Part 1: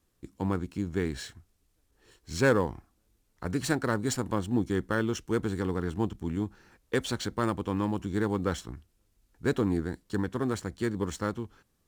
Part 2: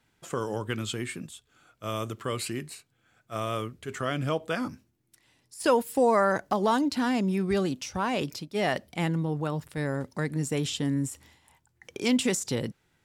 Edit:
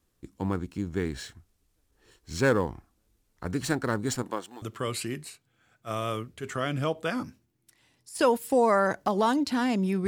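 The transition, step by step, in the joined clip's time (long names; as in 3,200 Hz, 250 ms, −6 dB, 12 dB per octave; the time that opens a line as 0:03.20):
part 1
0:04.22–0:04.62: high-pass filter 210 Hz → 1,200 Hz
0:04.62: continue with part 2 from 0:02.07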